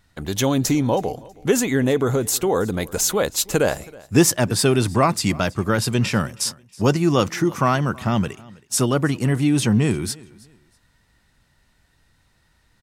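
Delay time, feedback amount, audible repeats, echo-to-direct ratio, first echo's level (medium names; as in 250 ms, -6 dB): 322 ms, 27%, 2, -22.5 dB, -23.0 dB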